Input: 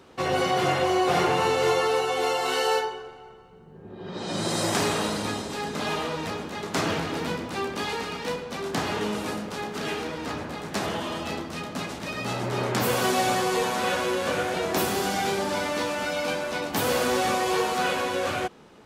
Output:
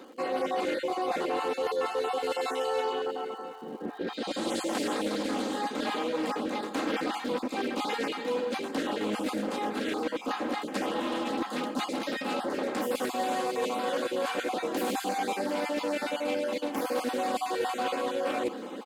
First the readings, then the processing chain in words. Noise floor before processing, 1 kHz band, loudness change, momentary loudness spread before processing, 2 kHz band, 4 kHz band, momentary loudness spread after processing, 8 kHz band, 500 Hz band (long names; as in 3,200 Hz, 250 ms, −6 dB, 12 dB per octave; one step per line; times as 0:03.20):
−48 dBFS, −4.5 dB, −4.5 dB, 10 LU, −7.0 dB, −6.5 dB, 3 LU, −9.0 dB, −3.5 dB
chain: time-frequency cells dropped at random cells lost 21%
high-pass filter 270 Hz 24 dB per octave
low-shelf EQ 440 Hz +11 dB
notch filter 5,600 Hz, Q 5.2
comb filter 3.8 ms, depth 64%
reversed playback
downward compressor 6 to 1, threshold −37 dBFS, peak gain reduction 20.5 dB
reversed playback
surface crackle 280 per second −57 dBFS
single-tap delay 707 ms −20.5 dB
highs frequency-modulated by the lows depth 0.21 ms
level +8 dB